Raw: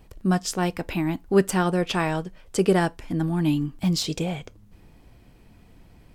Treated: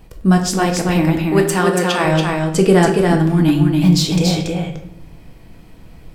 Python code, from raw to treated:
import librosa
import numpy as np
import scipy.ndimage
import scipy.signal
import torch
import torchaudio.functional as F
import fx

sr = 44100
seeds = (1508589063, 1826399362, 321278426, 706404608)

y = fx.highpass(x, sr, hz=420.0, slope=6, at=(1.26, 2.05))
y = y + 10.0 ** (-3.5 / 20.0) * np.pad(y, (int(282 * sr / 1000.0), 0))[:len(y)]
y = fx.room_shoebox(y, sr, seeds[0], volume_m3=170.0, walls='mixed', distance_m=0.64)
y = y * 10.0 ** (6.5 / 20.0)